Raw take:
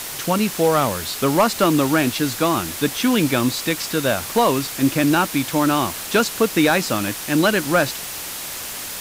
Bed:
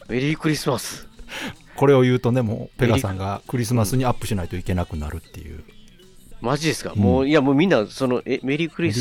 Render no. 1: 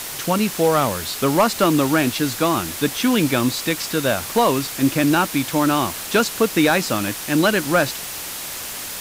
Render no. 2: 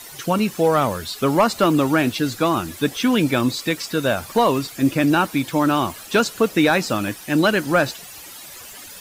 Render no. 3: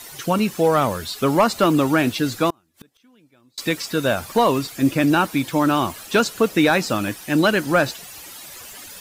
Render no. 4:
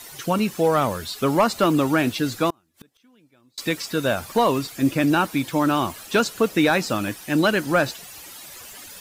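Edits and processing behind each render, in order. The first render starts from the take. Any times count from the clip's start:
nothing audible
denoiser 13 dB, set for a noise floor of -31 dBFS
2.5–3.58 flipped gate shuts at -22 dBFS, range -37 dB
gain -2 dB

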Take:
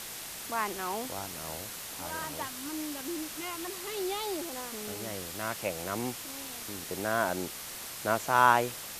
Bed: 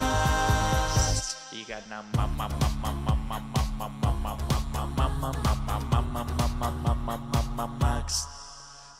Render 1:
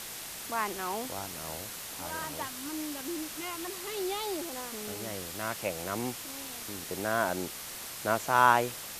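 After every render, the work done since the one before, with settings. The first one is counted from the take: nothing audible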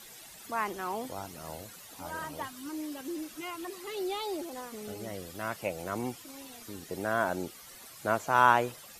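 denoiser 13 dB, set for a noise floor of -42 dBFS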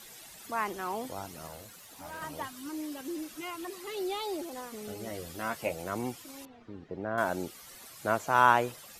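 1.47–2.22 tube stage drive 36 dB, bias 0.5; 5.04–5.75 doubler 13 ms -5 dB; 6.45–7.18 tape spacing loss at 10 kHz 43 dB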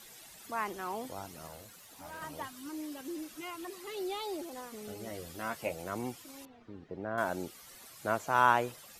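gain -3 dB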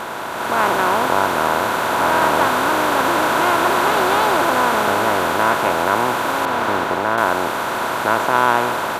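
per-bin compression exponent 0.2; AGC gain up to 11.5 dB

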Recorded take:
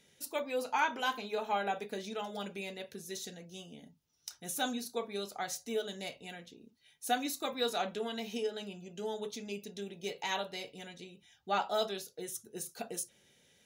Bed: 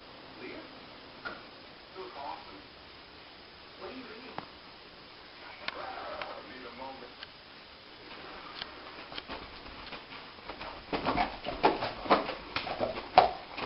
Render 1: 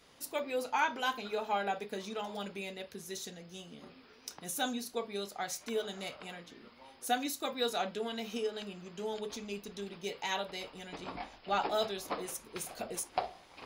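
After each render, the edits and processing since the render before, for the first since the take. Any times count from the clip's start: add bed -13 dB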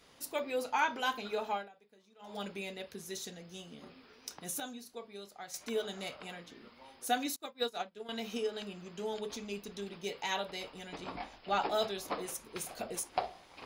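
1.48–2.4 dip -24 dB, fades 0.21 s; 4.6–5.54 gain -9 dB; 7.36–8.09 upward expander 2.5:1, over -46 dBFS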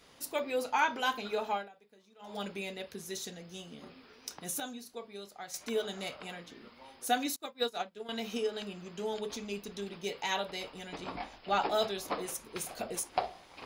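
gain +2 dB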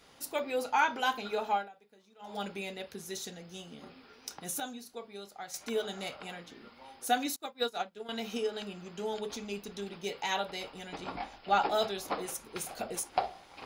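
small resonant body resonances 800/1400 Hz, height 6 dB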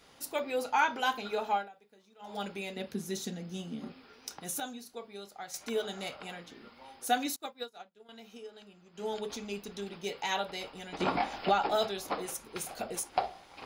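2.76–3.92 bell 220 Hz +12 dB 1.1 oct; 7.53–9.06 dip -13.5 dB, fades 0.13 s; 11–11.76 three-band squash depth 100%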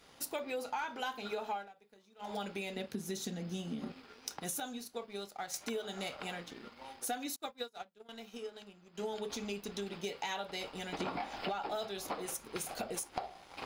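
sample leveller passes 1; compressor 6:1, threshold -36 dBFS, peak gain reduction 15 dB

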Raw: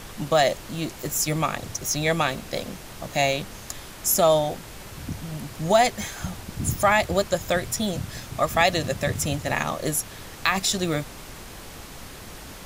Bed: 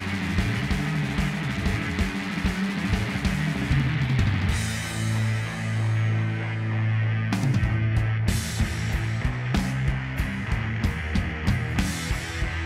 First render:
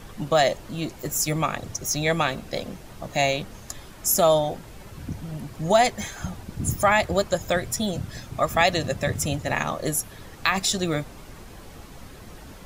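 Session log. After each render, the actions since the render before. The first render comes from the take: denoiser 8 dB, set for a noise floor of -41 dBFS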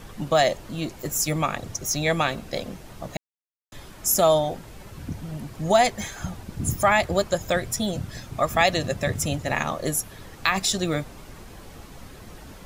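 3.17–3.72 mute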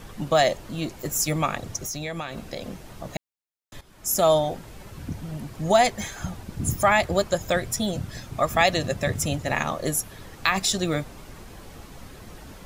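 1.85–3.06 compressor, threshold -28 dBFS; 3.81–4.31 fade in, from -15 dB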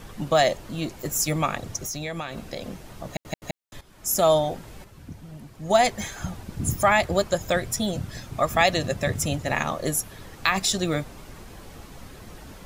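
3.08 stutter in place 0.17 s, 3 plays; 4.84–5.83 upward expander, over -29 dBFS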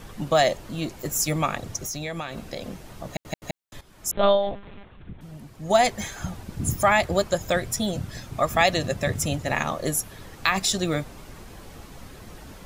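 4.11–5.21 monotone LPC vocoder at 8 kHz 200 Hz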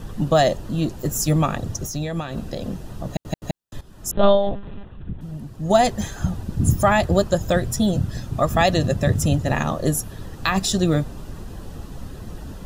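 low shelf 390 Hz +10.5 dB; notch 2200 Hz, Q 5.2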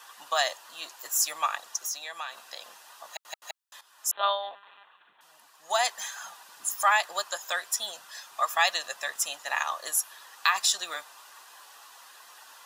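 Chebyshev high-pass 1000 Hz, order 3; notch 1300 Hz, Q 20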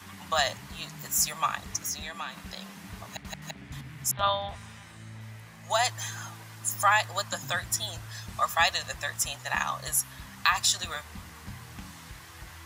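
add bed -19.5 dB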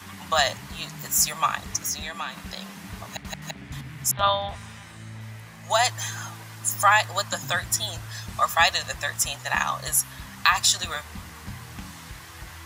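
gain +4.5 dB

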